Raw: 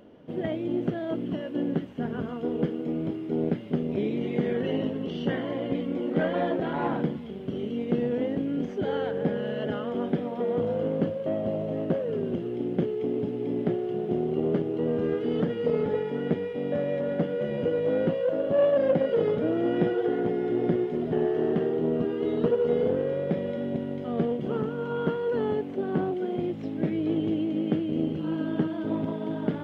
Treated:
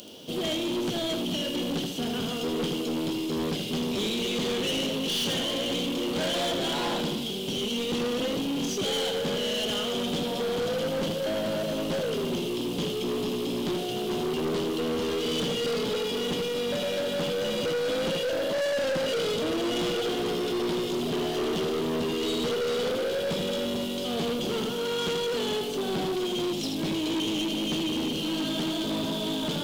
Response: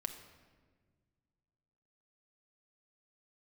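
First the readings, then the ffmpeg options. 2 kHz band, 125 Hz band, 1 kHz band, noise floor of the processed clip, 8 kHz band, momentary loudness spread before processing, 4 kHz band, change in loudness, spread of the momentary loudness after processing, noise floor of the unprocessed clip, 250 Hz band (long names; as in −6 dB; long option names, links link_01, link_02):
+5.5 dB, −4.0 dB, +2.0 dB, −31 dBFS, can't be measured, 6 LU, +19.0 dB, −0.5 dB, 3 LU, −35 dBFS, −2.0 dB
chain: -filter_complex "[0:a]lowshelf=frequency=200:gain=-6,bandreject=frequency=143.3:width_type=h:width=4,bandreject=frequency=286.6:width_type=h:width=4,bandreject=frequency=429.9:width_type=h:width=4,bandreject=frequency=573.2:width_type=h:width=4,bandreject=frequency=716.5:width_type=h:width=4,bandreject=frequency=859.8:width_type=h:width=4,bandreject=frequency=1003.1:width_type=h:width=4,bandreject=frequency=1146.4:width_type=h:width=4,bandreject=frequency=1289.7:width_type=h:width=4,bandreject=frequency=1433:width_type=h:width=4,bandreject=frequency=1576.3:width_type=h:width=4,bandreject=frequency=1719.6:width_type=h:width=4,bandreject=frequency=1862.9:width_type=h:width=4,bandreject=frequency=2006.2:width_type=h:width=4,bandreject=frequency=2149.5:width_type=h:width=4,bandreject=frequency=2292.8:width_type=h:width=4,bandreject=frequency=2436.1:width_type=h:width=4,bandreject=frequency=2579.4:width_type=h:width=4,bandreject=frequency=2722.7:width_type=h:width=4,bandreject=frequency=2866:width_type=h:width=4,bandreject=frequency=3009.3:width_type=h:width=4,bandreject=frequency=3152.6:width_type=h:width=4,bandreject=frequency=3295.9:width_type=h:width=4,bandreject=frequency=3439.2:width_type=h:width=4,bandreject=frequency=3582.5:width_type=h:width=4,bandreject=frequency=3725.8:width_type=h:width=4,bandreject=frequency=3869.1:width_type=h:width=4,bandreject=frequency=4012.4:width_type=h:width=4,bandreject=frequency=4155.7:width_type=h:width=4,bandreject=frequency=4299:width_type=h:width=4,asplit=2[link_01][link_02];[1:a]atrim=start_sample=2205,adelay=79[link_03];[link_02][link_03]afir=irnorm=-1:irlink=0,volume=-6.5dB[link_04];[link_01][link_04]amix=inputs=2:normalize=0,aexciter=amount=16:drive=6:freq=3000,aeval=exprs='(tanh(35.5*val(0)+0.1)-tanh(0.1))/35.5':channel_layout=same,volume=5.5dB"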